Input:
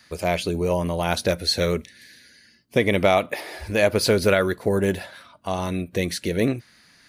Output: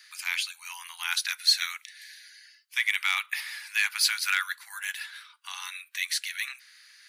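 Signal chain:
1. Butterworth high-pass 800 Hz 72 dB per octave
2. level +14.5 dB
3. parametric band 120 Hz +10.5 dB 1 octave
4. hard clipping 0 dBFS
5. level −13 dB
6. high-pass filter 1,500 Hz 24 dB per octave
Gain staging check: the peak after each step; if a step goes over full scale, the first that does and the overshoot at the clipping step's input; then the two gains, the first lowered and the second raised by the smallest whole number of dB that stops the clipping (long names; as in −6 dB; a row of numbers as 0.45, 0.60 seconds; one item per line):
−8.5, +6.0, +6.0, 0.0, −13.0, −10.5 dBFS
step 2, 6.0 dB
step 2 +8.5 dB, step 5 −7 dB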